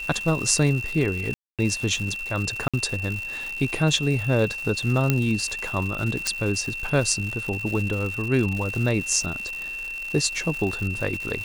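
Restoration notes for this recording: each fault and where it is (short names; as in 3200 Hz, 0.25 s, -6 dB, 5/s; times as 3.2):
crackle 240/s -29 dBFS
tone 2700 Hz -30 dBFS
1.34–1.59 gap 0.247 s
2.68–2.74 gap 56 ms
5.1 pop -6 dBFS
6.27 pop -7 dBFS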